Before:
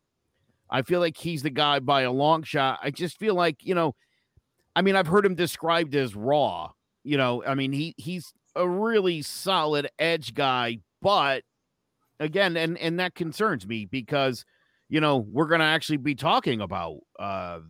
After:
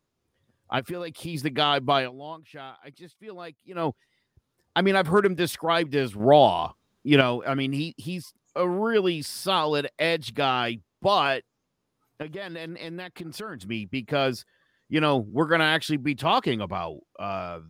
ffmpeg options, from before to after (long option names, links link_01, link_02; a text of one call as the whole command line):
ffmpeg -i in.wav -filter_complex "[0:a]asplit=3[link_01][link_02][link_03];[link_01]afade=type=out:start_time=0.78:duration=0.02[link_04];[link_02]acompressor=threshold=-29dB:ratio=6:attack=3.2:release=140:knee=1:detection=peak,afade=type=in:start_time=0.78:duration=0.02,afade=type=out:start_time=1.33:duration=0.02[link_05];[link_03]afade=type=in:start_time=1.33:duration=0.02[link_06];[link_04][link_05][link_06]amix=inputs=3:normalize=0,asettb=1/sr,asplit=3[link_07][link_08][link_09];[link_07]atrim=end=12.224[link_10];[link_08]atrim=start=12.22:end=13.67,asetpts=PTS-STARTPTS,afade=type=in:duration=0.004:curve=qsin,afade=type=out:start_time=1.446:duration=0.004:curve=qsin,acompressor=threshold=-34dB:ratio=4:attack=3.2:release=140:knee=1:detection=peak[link_11];[link_09]atrim=start=13.666[link_12];[link_10][link_11]acrossfade=duration=0.004:curve1=hsin:curve2=qsin[link_13];[link_13][link_12]acrossfade=duration=0.004:curve1=qsin:curve2=hsin,asplit=5[link_14][link_15][link_16][link_17][link_18];[link_14]atrim=end=2.11,asetpts=PTS-STARTPTS,afade=type=out:start_time=1.97:duration=0.14:silence=0.133352[link_19];[link_15]atrim=start=2.11:end=3.74,asetpts=PTS-STARTPTS,volume=-17.5dB[link_20];[link_16]atrim=start=3.74:end=6.202,asetpts=PTS-STARTPTS,afade=type=in:duration=0.14:silence=0.133352[link_21];[link_17]atrim=start=6.198:end=7.212,asetpts=PTS-STARTPTS,volume=6.5dB[link_22];[link_18]atrim=start=7.208[link_23];[link_19][link_20][link_21]concat=n=3:v=0:a=1[link_24];[link_24][link_22]acrossfade=duration=0.004:curve1=hsin:curve2=hsin[link_25];[link_25][link_23]acrossfade=duration=0.004:curve1=hsin:curve2=hsin" out.wav